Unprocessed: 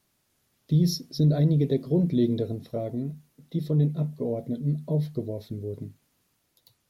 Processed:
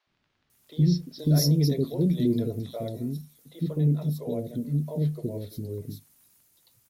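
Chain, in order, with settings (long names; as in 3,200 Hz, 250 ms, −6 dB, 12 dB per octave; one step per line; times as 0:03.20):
high-shelf EQ 5,700 Hz +11.5 dB
surface crackle 24 per second −49 dBFS
three-band delay without the direct sound mids, lows, highs 70/500 ms, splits 480/3,900 Hz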